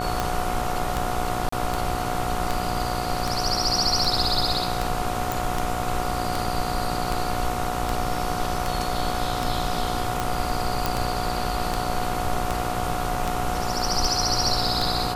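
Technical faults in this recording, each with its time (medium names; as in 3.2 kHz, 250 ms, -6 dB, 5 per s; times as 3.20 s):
buzz 60 Hz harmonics 24 -30 dBFS
tick 78 rpm
whine 730 Hz -29 dBFS
1.49–1.52 s: dropout 34 ms
5.32 s: pop
10.86 s: pop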